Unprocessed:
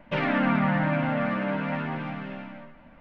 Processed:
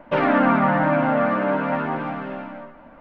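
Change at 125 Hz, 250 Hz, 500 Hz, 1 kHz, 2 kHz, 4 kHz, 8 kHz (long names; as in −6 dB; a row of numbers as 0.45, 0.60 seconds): +0.5 dB, +4.5 dB, +9.0 dB, +9.0 dB, +4.5 dB, 0.0 dB, can't be measured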